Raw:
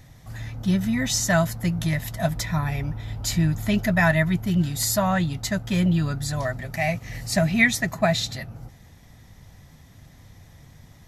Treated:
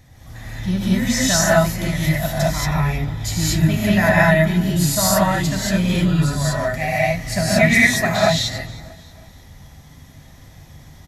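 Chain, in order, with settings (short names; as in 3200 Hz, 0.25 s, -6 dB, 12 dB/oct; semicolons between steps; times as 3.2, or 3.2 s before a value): feedback echo 0.317 s, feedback 44%, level -21 dB; non-linear reverb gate 0.25 s rising, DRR -7 dB; gain -1.5 dB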